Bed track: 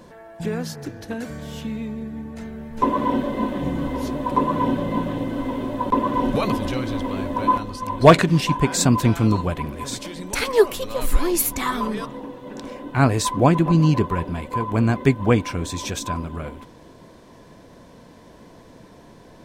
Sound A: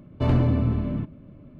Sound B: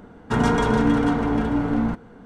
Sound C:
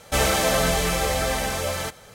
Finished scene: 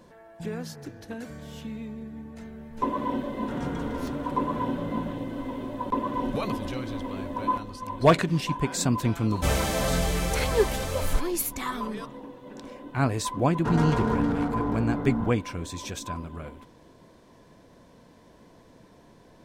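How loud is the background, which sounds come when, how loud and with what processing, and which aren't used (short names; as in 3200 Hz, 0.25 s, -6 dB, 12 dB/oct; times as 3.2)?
bed track -7.5 dB
3.17 add B -16.5 dB + stuck buffer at 0.8
9.3 add C -8 dB + low shelf 290 Hz +9 dB
13.34 add B -6.5 dB + Wiener smoothing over 15 samples
not used: A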